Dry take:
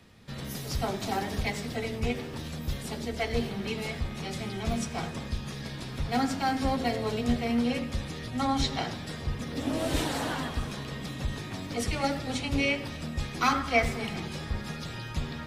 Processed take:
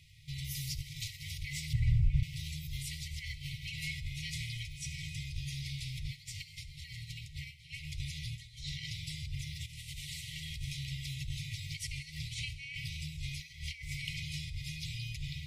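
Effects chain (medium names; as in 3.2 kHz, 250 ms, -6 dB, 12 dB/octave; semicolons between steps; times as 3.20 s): compressor with a negative ratio -34 dBFS, ratio -1; 1.73–2.23 s: tilt EQ -4.5 dB/octave; FFT band-reject 160–1900 Hz; on a send: thinning echo 66 ms, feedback 75%, level -19 dB; on the sum: trim -3 dB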